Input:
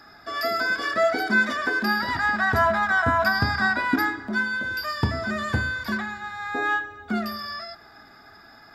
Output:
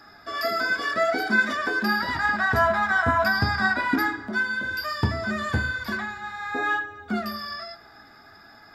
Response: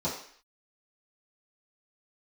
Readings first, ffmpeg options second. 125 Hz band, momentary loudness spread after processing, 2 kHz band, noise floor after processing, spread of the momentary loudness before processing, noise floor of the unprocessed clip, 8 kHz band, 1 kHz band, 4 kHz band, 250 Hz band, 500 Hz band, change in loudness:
0.0 dB, 10 LU, -0.5 dB, -50 dBFS, 10 LU, -50 dBFS, -0.5 dB, -0.5 dB, -0.5 dB, -1.0 dB, -1.0 dB, -0.5 dB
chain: -af "flanger=delay=9.5:depth=7.2:regen=-50:speed=0.58:shape=sinusoidal,volume=3.5dB"

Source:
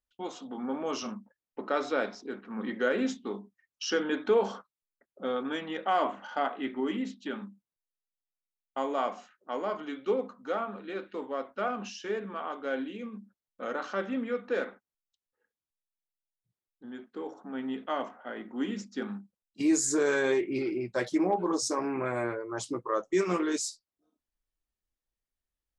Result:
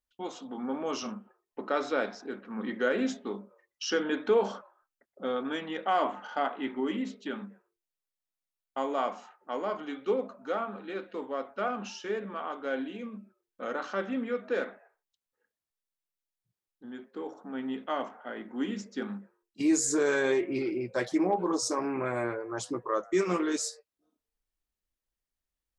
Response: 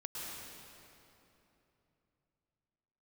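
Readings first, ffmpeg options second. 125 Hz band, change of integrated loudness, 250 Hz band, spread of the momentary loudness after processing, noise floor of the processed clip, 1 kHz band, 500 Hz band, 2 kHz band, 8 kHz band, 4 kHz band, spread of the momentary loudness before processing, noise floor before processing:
0.0 dB, 0.0 dB, 0.0 dB, 14 LU, under -85 dBFS, 0.0 dB, 0.0 dB, 0.0 dB, 0.0 dB, 0.0 dB, 14 LU, under -85 dBFS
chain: -filter_complex "[0:a]asplit=2[a][b];[b]highpass=f=280:t=q:w=0.5412,highpass=f=280:t=q:w=1.307,lowpass=f=2.2k:t=q:w=0.5176,lowpass=f=2.2k:t=q:w=0.7071,lowpass=f=2.2k:t=q:w=1.932,afreqshift=150[c];[1:a]atrim=start_sample=2205,atrim=end_sample=6174,adelay=121[d];[c][d]afir=irnorm=-1:irlink=0,volume=-19.5dB[e];[a][e]amix=inputs=2:normalize=0"

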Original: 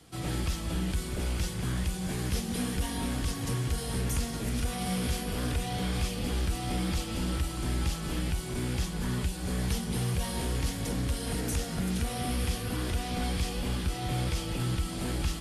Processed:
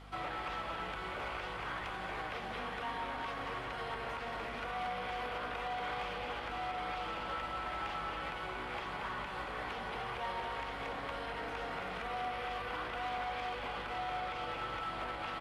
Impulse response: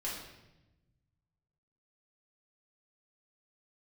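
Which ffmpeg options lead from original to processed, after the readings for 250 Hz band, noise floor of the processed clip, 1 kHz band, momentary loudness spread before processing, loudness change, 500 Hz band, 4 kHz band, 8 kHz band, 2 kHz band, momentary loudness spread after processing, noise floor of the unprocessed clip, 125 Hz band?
-16.5 dB, -42 dBFS, +3.5 dB, 2 LU, -7.5 dB, -3.5 dB, -7.5 dB, -25.0 dB, +1.0 dB, 2 LU, -37 dBFS, -20.5 dB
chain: -filter_complex "[0:a]acrossover=split=3700[a][b];[b]acompressor=threshold=-52dB:ratio=4:attack=1:release=60[c];[a][c]amix=inputs=2:normalize=0,acrossover=split=300|3300[d][e][f];[d]asoftclip=type=tanh:threshold=-38dB[g];[g][e][f]amix=inputs=3:normalize=0,aecho=1:1:231:0.501,alimiter=level_in=8dB:limit=-24dB:level=0:latency=1:release=169,volume=-8dB,acrossover=split=500 3900:gain=0.251 1 0.178[h][i][j];[h][i][j]amix=inputs=3:normalize=0,aeval=exprs='val(0)+0.00224*(sin(2*PI*50*n/s)+sin(2*PI*2*50*n/s)/2+sin(2*PI*3*50*n/s)/3+sin(2*PI*4*50*n/s)/4+sin(2*PI*5*50*n/s)/5)':c=same,bandreject=f=1.7k:w=17,asoftclip=type=hard:threshold=-40dB,equalizer=f=1.1k:t=o:w=2.5:g=10"

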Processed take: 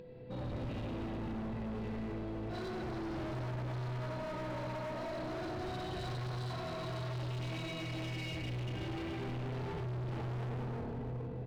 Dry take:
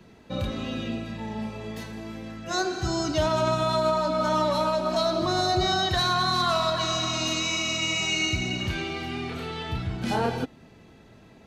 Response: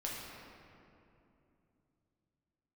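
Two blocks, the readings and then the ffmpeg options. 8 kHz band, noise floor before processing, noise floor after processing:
-25.5 dB, -52 dBFS, -41 dBFS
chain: -filter_complex "[0:a]acompressor=threshold=-26dB:ratio=6,aeval=exprs='val(0)+0.00501*sin(2*PI*500*n/s)':c=same,asplit=2[a][b];[b]aecho=0:1:90|193.5|312.5|449.4|606.8:0.631|0.398|0.251|0.158|0.1[c];[a][c]amix=inputs=2:normalize=0[d];[1:a]atrim=start_sample=2205[e];[d][e]afir=irnorm=-1:irlink=0,aresample=11025,asoftclip=type=tanh:threshold=-24.5dB,aresample=44100,lowpass=f=1.7k:p=1,acompressor=mode=upward:threshold=-45dB:ratio=2.5,equalizer=f=125:t=o:w=0.33:g=8,equalizer=f=400:t=o:w=0.33:g=8,equalizer=f=1.25k:t=o:w=0.33:g=-9,asoftclip=type=hard:threshold=-32dB,lowshelf=f=68:g=7,bandreject=f=50:t=h:w=6,bandreject=f=100:t=h:w=6,volume=-6.5dB"

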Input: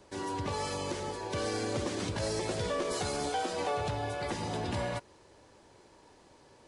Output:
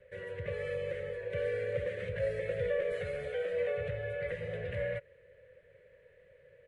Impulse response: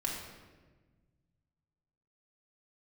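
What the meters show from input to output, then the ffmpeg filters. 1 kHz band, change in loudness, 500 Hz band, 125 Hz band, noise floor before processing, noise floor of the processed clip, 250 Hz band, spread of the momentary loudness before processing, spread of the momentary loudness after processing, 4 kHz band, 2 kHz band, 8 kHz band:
-20.0 dB, -1.5 dB, +2.0 dB, -3.5 dB, -60 dBFS, -63 dBFS, -14.5 dB, 4 LU, 5 LU, -14.0 dB, 0.0 dB, under -25 dB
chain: -af "firequalizer=gain_entry='entry(160,0);entry(280,-28);entry(510,14);entry(810,-26);entry(1800,8);entry(5100,-29);entry(9100,-19)':delay=0.05:min_phase=1,volume=-3.5dB"

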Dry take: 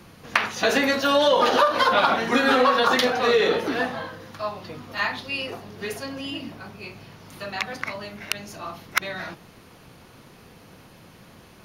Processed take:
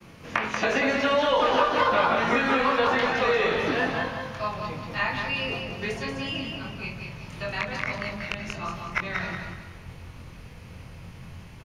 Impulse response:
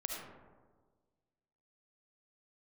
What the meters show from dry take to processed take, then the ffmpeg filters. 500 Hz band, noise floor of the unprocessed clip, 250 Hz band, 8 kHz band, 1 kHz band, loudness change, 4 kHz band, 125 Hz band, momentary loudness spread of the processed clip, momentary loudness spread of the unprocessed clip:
-3.0 dB, -50 dBFS, -2.0 dB, -8.0 dB, -2.5 dB, -3.5 dB, -5.0 dB, +5.0 dB, 22 LU, 19 LU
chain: -filter_complex "[0:a]agate=range=-33dB:threshold=-46dB:ratio=3:detection=peak,bandreject=f=740:w=20,acrossover=split=2800[a][b];[b]acompressor=threshold=-35dB:ratio=4:attack=1:release=60[c];[a][c]amix=inputs=2:normalize=0,aexciter=amount=2.1:drive=3.6:freq=2.1k,asubboost=boost=6:cutoff=110,acrossover=split=100|770|7500[d][e][f][g];[d]acompressor=threshold=-45dB:ratio=4[h];[e]acompressor=threshold=-27dB:ratio=4[i];[f]acompressor=threshold=-24dB:ratio=4[j];[g]acompressor=threshold=-54dB:ratio=4[k];[h][i][j][k]amix=inputs=4:normalize=0,aemphasis=mode=reproduction:type=75fm,asplit=2[l][m];[m]adelay=23,volume=-5dB[n];[l][n]amix=inputs=2:normalize=0,asplit=2[o][p];[p]aecho=0:1:185|370|555|740|925:0.562|0.214|0.0812|0.0309|0.0117[q];[o][q]amix=inputs=2:normalize=0"

